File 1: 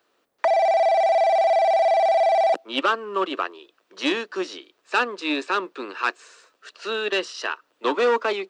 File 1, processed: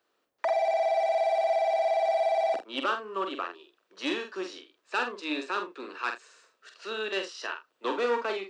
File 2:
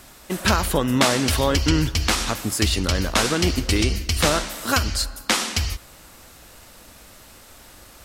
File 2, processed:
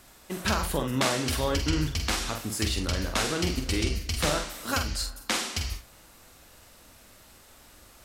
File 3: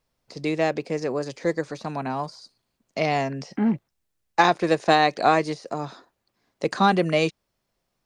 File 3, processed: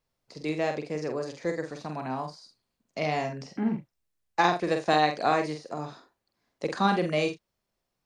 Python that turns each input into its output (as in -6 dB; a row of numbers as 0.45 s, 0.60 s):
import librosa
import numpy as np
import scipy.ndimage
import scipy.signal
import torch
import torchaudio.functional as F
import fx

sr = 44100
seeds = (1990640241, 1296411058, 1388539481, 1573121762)

y = fx.room_early_taps(x, sr, ms=(46, 80), db=(-6.0, -17.5))
y = y * 10.0 ** (-30 / 20.0) / np.sqrt(np.mean(np.square(y)))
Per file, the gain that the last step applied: -8.0 dB, -8.0 dB, -6.0 dB